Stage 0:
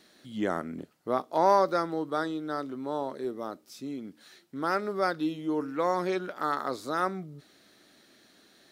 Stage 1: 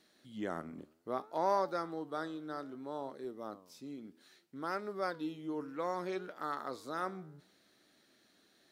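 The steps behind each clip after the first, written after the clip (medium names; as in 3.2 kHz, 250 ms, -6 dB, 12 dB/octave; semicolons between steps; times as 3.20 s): flange 0.63 Hz, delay 6 ms, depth 8.1 ms, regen +89%; trim -4.5 dB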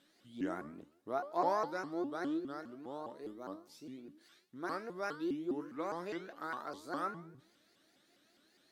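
feedback comb 320 Hz, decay 0.4 s, harmonics all, mix 80%; vibrato with a chosen wave saw up 4.9 Hz, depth 250 cents; trim +9.5 dB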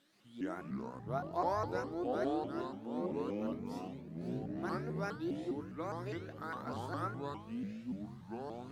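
ever faster or slower copies 128 ms, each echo -6 st, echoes 3; trim -2 dB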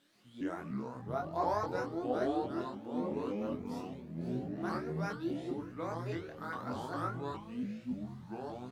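doubling 24 ms -3 dB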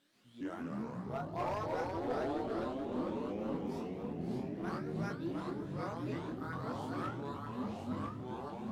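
overload inside the chain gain 30 dB; ever faster or slower copies 136 ms, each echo -2 st, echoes 3; trim -3.5 dB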